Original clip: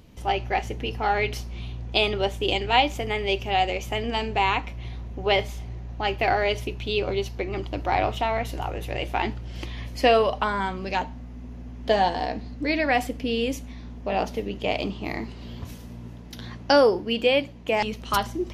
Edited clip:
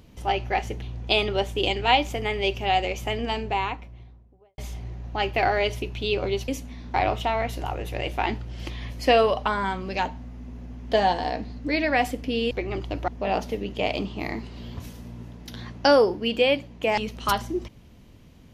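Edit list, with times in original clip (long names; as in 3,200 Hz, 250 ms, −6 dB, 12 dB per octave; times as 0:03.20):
0:00.82–0:01.67: remove
0:03.92–0:05.43: fade out and dull
0:07.33–0:07.90: swap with 0:13.47–0:13.93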